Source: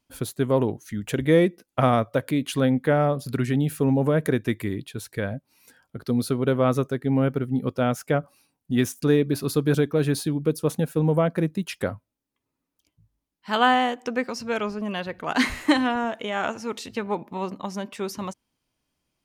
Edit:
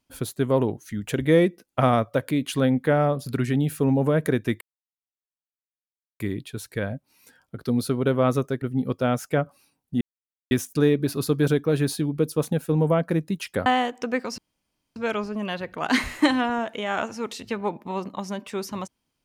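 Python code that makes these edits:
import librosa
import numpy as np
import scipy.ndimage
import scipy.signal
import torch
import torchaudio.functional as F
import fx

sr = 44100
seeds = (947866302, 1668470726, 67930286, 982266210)

y = fx.edit(x, sr, fx.insert_silence(at_s=4.61, length_s=1.59),
    fx.cut(start_s=7.03, length_s=0.36),
    fx.insert_silence(at_s=8.78, length_s=0.5),
    fx.cut(start_s=11.93, length_s=1.77),
    fx.insert_room_tone(at_s=14.42, length_s=0.58), tone=tone)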